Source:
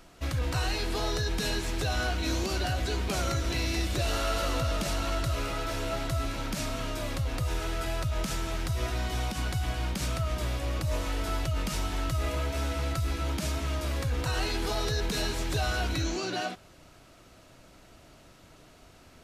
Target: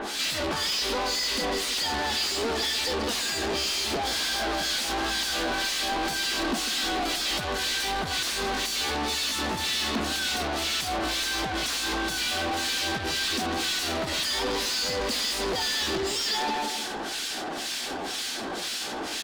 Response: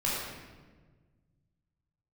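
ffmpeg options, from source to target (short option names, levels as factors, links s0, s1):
-filter_complex "[0:a]acrossover=split=1200[s0][s1];[s0]aeval=exprs='val(0)*(1-1/2+1/2*cos(2*PI*2*n/s))':c=same[s2];[s1]aeval=exprs='val(0)*(1-1/2-1/2*cos(2*PI*2*n/s))':c=same[s3];[s2][s3]amix=inputs=2:normalize=0,asplit=2[s4][s5];[s5]alimiter=level_in=2:limit=0.0631:level=0:latency=1:release=56,volume=0.501,volume=1[s6];[s4][s6]amix=inputs=2:normalize=0,aemphasis=mode=production:type=75fm,aeval=exprs='(mod(8.41*val(0)+1,2)-1)/8.41':c=same,asplit=2[s7][s8];[s8]adelay=151,lowpass=f=1500:p=1,volume=0.335,asplit=2[s9][s10];[s10]adelay=151,lowpass=f=1500:p=1,volume=0.3,asplit=2[s11][s12];[s12]adelay=151,lowpass=f=1500:p=1,volume=0.3[s13];[s7][s9][s11][s13]amix=inputs=4:normalize=0,acompressor=threshold=0.0316:ratio=20,lowpass=8600,asetrate=52444,aresample=44100,atempo=0.840896,asplit=2[s14][s15];[s15]highpass=f=720:p=1,volume=39.8,asoftclip=type=tanh:threshold=0.0708[s16];[s14][s16]amix=inputs=2:normalize=0,lowpass=f=4000:p=1,volume=0.501,equalizer=f=125:t=o:w=1:g=-12,equalizer=f=250:t=o:w=1:g=9,equalizer=f=4000:t=o:w=1:g=7"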